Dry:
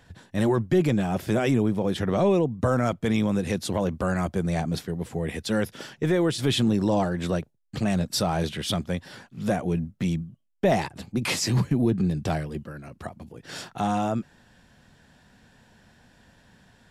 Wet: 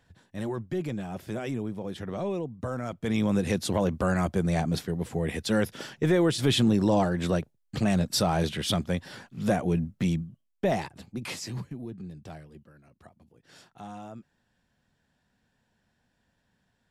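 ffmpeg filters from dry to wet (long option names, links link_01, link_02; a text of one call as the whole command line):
ffmpeg -i in.wav -af "afade=type=in:start_time=2.88:duration=0.48:silence=0.316228,afade=type=out:start_time=10.01:duration=0.88:silence=0.473151,afade=type=out:start_time=10.89:duration=0.91:silence=0.316228" out.wav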